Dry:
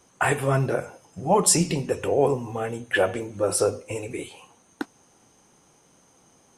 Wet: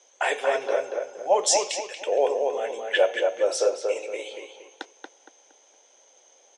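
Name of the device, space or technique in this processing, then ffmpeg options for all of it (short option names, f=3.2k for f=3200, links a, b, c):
phone speaker on a table: -filter_complex "[0:a]asettb=1/sr,asplit=3[a][b][c];[a]atrim=end=1.574[d];[b]atrim=start=1.57:end=2.07,asetpts=PTS-STARTPTS,afade=t=in:d=0.004:c=qsin,afade=t=out:st=0.496:d=0.004:c=qsin,highpass=1.5k[e];[c]atrim=start=2.066[f];[d][e]acrossfade=d=0.004:c1=hsin:c2=qsin[g];[g][f]acrossfade=d=0.004:c1=qsin:c2=hsin,highpass=f=440:w=0.5412,highpass=f=440:w=1.3066,equalizer=f=570:t=q:w=4:g=7,equalizer=f=1.2k:t=q:w=4:g=-9,equalizer=f=2.2k:t=q:w=4:g=3,equalizer=f=3.4k:t=q:w=4:g=9,equalizer=f=6.2k:t=q:w=4:g=8,lowpass=f=7.1k:w=0.5412,lowpass=f=7.1k:w=1.3066,asplit=2[h][i];[i]adelay=232,lowpass=f=2.4k:p=1,volume=-3.5dB,asplit=2[j][k];[k]adelay=232,lowpass=f=2.4k:p=1,volume=0.35,asplit=2[l][m];[m]adelay=232,lowpass=f=2.4k:p=1,volume=0.35,asplit=2[n][o];[o]adelay=232,lowpass=f=2.4k:p=1,volume=0.35,asplit=2[p][q];[q]adelay=232,lowpass=f=2.4k:p=1,volume=0.35[r];[h][j][l][n][p][r]amix=inputs=6:normalize=0,volume=-2dB"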